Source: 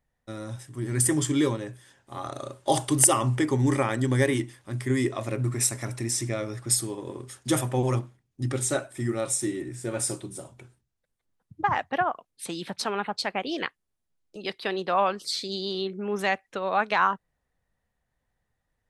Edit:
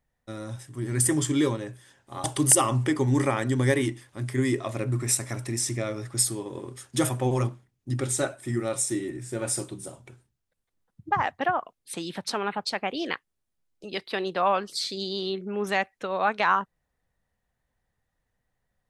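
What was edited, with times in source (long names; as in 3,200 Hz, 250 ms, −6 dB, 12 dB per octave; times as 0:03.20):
0:02.24–0:02.76: remove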